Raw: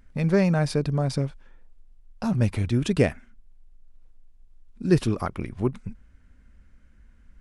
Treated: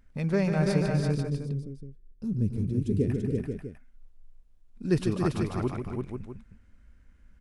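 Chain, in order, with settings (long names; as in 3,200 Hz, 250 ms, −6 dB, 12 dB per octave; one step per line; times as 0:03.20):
0:00.89–0:03.10: drawn EQ curve 440 Hz 0 dB, 670 Hz −29 dB, 9,800 Hz −10 dB
multi-tap delay 145/282/337/489/650 ms −8/−8.5/−4/−7.5/−13 dB
level −5.5 dB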